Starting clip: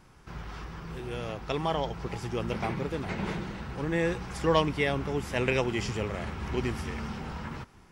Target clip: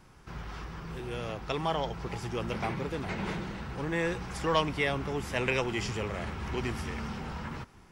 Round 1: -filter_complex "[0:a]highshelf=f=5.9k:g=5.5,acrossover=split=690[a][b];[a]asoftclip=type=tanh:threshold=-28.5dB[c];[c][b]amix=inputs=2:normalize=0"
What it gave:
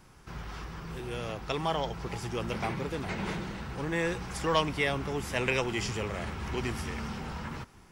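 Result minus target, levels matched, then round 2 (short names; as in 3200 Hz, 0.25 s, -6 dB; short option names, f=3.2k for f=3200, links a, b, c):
8000 Hz band +3.0 dB
-filter_complex "[0:a]acrossover=split=690[a][b];[a]asoftclip=type=tanh:threshold=-28.5dB[c];[c][b]amix=inputs=2:normalize=0"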